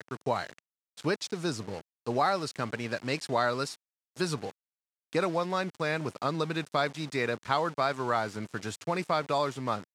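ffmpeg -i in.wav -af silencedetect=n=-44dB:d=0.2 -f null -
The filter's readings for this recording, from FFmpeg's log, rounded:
silence_start: 0.59
silence_end: 0.97 | silence_duration: 0.39
silence_start: 1.81
silence_end: 2.06 | silence_duration: 0.25
silence_start: 3.75
silence_end: 4.17 | silence_duration: 0.41
silence_start: 4.51
silence_end: 5.13 | silence_duration: 0.62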